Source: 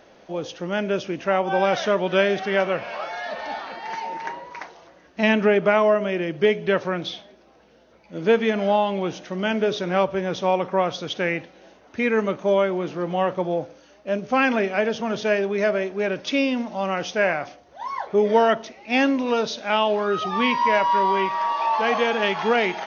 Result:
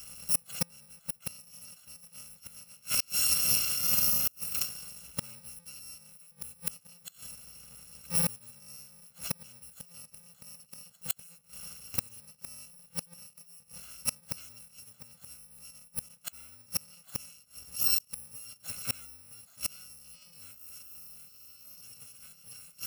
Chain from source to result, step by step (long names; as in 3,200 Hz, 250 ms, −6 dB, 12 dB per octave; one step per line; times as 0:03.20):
samples in bit-reversed order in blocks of 128 samples
gate with flip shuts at −19 dBFS, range −34 dB
level +4.5 dB